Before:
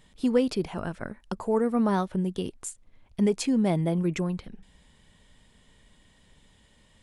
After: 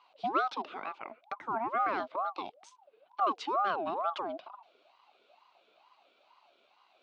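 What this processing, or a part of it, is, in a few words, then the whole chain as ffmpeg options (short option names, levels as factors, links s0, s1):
voice changer toy: -af "aeval=exprs='val(0)*sin(2*PI*730*n/s+730*0.4/2.2*sin(2*PI*2.2*n/s))':c=same,highpass=460,equalizer=f=480:t=q:w=4:g=-10,equalizer=f=900:t=q:w=4:g=-5,equalizer=f=1800:t=q:w=4:g=-10,lowpass=f=4100:w=0.5412,lowpass=f=4100:w=1.3066"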